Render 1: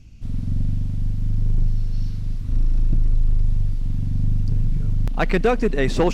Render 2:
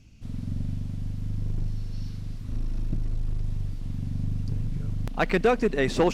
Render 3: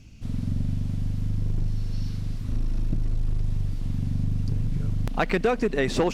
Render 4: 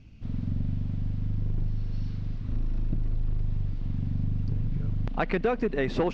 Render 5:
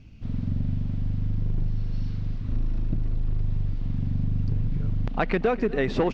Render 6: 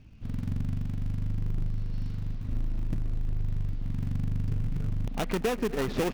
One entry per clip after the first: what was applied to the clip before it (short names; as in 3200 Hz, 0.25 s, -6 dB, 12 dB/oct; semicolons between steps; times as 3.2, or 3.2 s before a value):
low shelf 97 Hz -10 dB; gain -2 dB
compressor 3:1, threshold -26 dBFS, peak gain reduction 7 dB; gain +5 dB
air absorption 200 m; gain -2.5 dB
outdoor echo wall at 42 m, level -19 dB; gain +2.5 dB
switching dead time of 0.29 ms; gain -4 dB